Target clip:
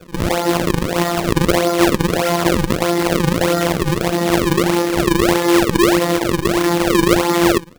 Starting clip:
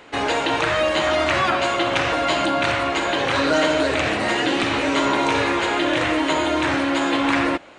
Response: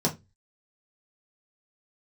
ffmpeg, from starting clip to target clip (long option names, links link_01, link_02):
-filter_complex "[1:a]atrim=start_sample=2205,atrim=end_sample=3969,asetrate=48510,aresample=44100[link_01];[0:a][link_01]afir=irnorm=-1:irlink=0,afftfilt=real='hypot(re,im)*cos(PI*b)':imag='0':win_size=1024:overlap=0.75,acrusher=samples=37:mix=1:aa=0.000001:lfo=1:lforange=59.2:lforate=1.6,volume=-5.5dB"